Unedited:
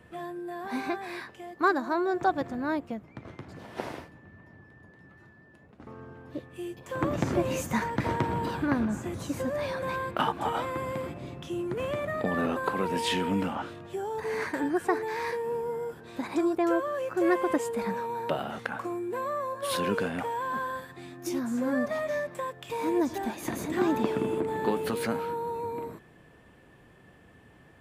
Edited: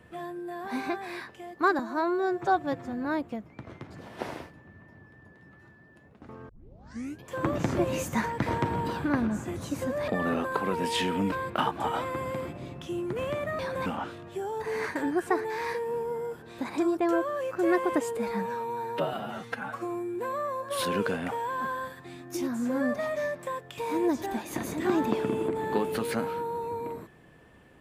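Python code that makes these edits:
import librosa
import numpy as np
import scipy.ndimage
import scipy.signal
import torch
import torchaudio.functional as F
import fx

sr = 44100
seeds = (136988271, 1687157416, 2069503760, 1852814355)

y = fx.edit(x, sr, fx.stretch_span(start_s=1.79, length_s=0.84, factor=1.5),
    fx.tape_start(start_s=6.07, length_s=0.74),
    fx.swap(start_s=9.66, length_s=0.27, other_s=12.2, other_length_s=1.24),
    fx.stretch_span(start_s=17.75, length_s=1.32, factor=1.5), tone=tone)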